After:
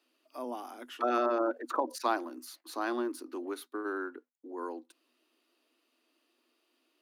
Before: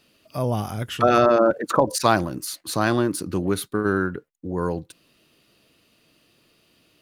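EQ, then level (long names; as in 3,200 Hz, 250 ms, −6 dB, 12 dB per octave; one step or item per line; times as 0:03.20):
dynamic equaliser 8,100 Hz, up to −5 dB, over −48 dBFS, Q 1.9
Chebyshev high-pass with heavy ripple 240 Hz, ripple 6 dB
−9.0 dB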